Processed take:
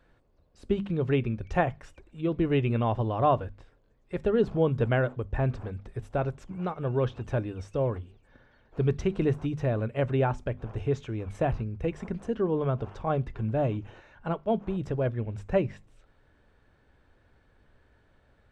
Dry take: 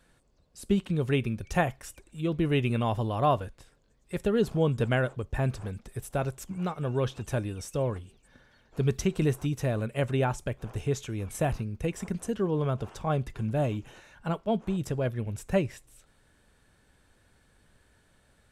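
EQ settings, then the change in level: tape spacing loss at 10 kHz 27 dB; bell 180 Hz -4.5 dB 0.82 oct; notches 50/100/150/200/250 Hz; +3.5 dB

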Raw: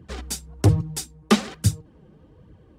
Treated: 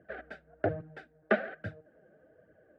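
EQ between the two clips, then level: double band-pass 1000 Hz, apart 1.3 oct; air absorption 480 m; +8.5 dB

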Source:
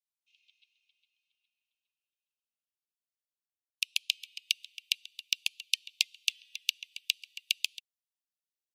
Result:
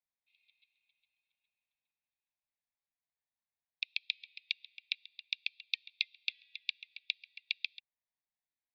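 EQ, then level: steep low-pass 3700 Hz 36 dB/oct; fixed phaser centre 2000 Hz, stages 8; +3.0 dB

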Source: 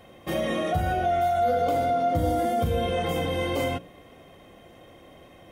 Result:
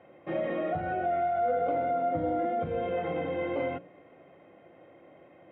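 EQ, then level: speaker cabinet 210–2000 Hz, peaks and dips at 230 Hz -9 dB, 430 Hz -5 dB, 730 Hz -4 dB, 1100 Hz -8 dB, 1700 Hz -6 dB; 0.0 dB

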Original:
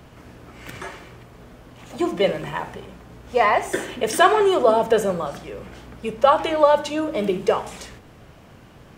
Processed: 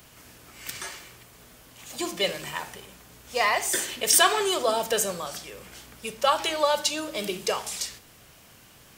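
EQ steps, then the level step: pre-emphasis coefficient 0.9; dynamic EQ 4700 Hz, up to +6 dB, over -57 dBFS, Q 1.9; +9.0 dB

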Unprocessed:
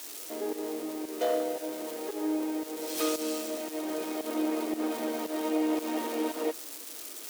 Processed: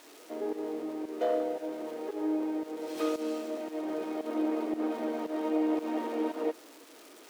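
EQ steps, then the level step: high shelf 2700 Hz -11 dB; high shelf 6900 Hz -8.5 dB; 0.0 dB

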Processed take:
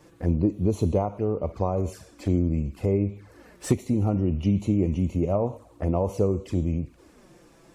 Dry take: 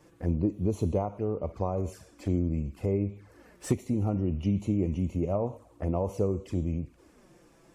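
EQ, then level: bell 4000 Hz +3 dB 0.39 oct; +4.5 dB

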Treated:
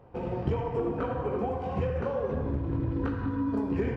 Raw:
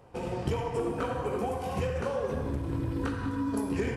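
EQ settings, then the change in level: tape spacing loss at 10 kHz 32 dB; +2.5 dB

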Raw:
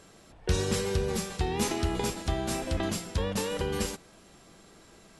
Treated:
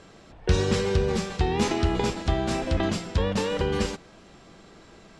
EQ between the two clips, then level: air absorption 120 m; high shelf 7800 Hz +5.5 dB; +5.5 dB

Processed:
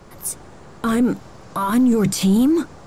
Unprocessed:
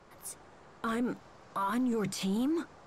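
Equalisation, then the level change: low shelf 380 Hz +10.5 dB; high shelf 5500 Hz +11 dB; +8.0 dB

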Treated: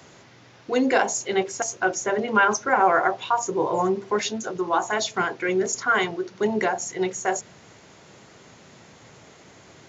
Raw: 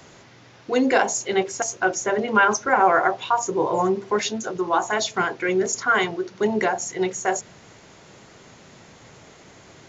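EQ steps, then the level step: HPF 62 Hz; -1.5 dB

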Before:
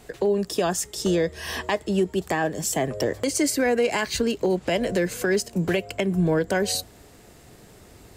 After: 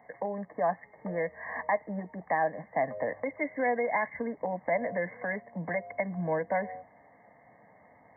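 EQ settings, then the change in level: HPF 290 Hz 12 dB/oct; brick-wall FIR low-pass 2200 Hz; fixed phaser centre 1400 Hz, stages 6; 0.0 dB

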